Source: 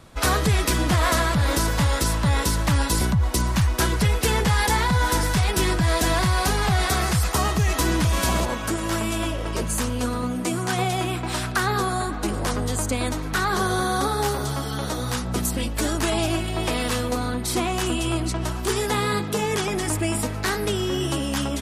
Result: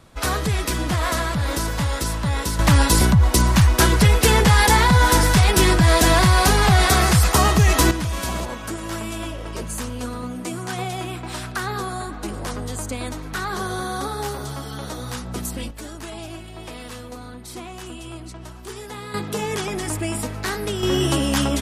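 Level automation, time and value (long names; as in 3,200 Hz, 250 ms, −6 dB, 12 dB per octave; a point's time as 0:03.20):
−2 dB
from 0:02.59 +6 dB
from 0:07.91 −4 dB
from 0:15.71 −11.5 dB
from 0:19.14 −1.5 dB
from 0:20.83 +5 dB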